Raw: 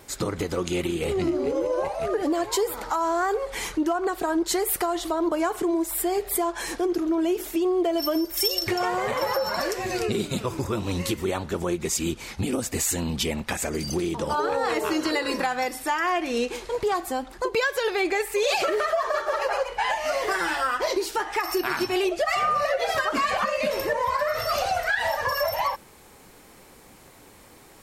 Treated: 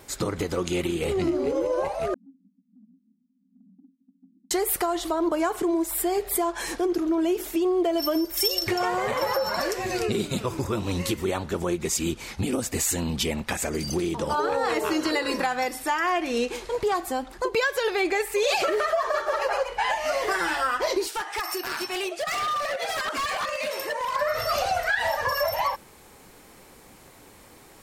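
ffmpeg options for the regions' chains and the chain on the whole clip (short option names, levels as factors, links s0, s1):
-filter_complex "[0:a]asettb=1/sr,asplit=3[s0][s1][s2];[s0]atrim=end=2.144[s3];[s1]atrim=start=2.14:end=4.51,asetpts=PTS-STARTPTS,afade=t=in:d=0.004:c=qsin,afade=t=out:st=2.366:d=0.004:c=qsin,asuperpass=centerf=220:order=20:qfactor=2.3,acompressor=threshold=0.00251:ratio=2.5:attack=3.2:release=140:knee=1:detection=peak[s4];[s2]atrim=start=4.506[s5];[s3][s4]acrossfade=d=0.004:c1=hsin:c2=qsin[s6];[s6][s5]acrossfade=d=0.004:c1=qsin:c2=hsin,asettb=1/sr,asplit=3[s7][s8][s9];[s7]atrim=end=21.074[s10];[s8]atrim=start=21.07:end=24.16,asetpts=PTS-STARTPTS,afade=t=in:d=0.004:c=qsin,afade=t=out:st=3.086:d=0.004:c=qsin,highpass=f=820:p=1,equalizer=f=8900:t=o:w=0.26:g=4.5,aeval=exprs='0.075*(abs(mod(val(0)/0.075+3,4)-2)-1)':c=same[s11];[s9]atrim=start=24.156[s12];[s10][s11]acrossfade=d=0.004:c1=hsin:c2=qsin[s13];[s13][s12]acrossfade=d=0.004:c1=qsin:c2=hsin"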